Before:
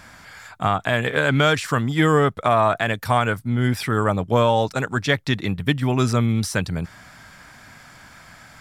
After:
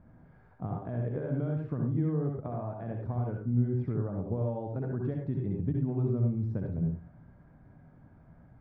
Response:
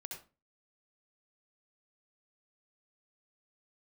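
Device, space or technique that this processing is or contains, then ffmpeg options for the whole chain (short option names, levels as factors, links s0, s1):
television next door: -filter_complex "[0:a]acompressor=threshold=0.0891:ratio=6,lowpass=400[s0];[1:a]atrim=start_sample=2205[s1];[s0][s1]afir=irnorm=-1:irlink=0"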